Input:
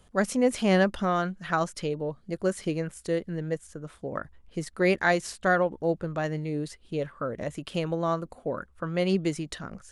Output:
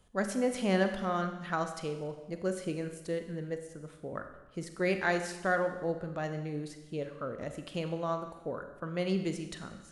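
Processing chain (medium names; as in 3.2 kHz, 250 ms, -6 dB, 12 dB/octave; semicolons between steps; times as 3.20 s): Schroeder reverb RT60 1.1 s, combs from 31 ms, DRR 7 dB; trim -6.5 dB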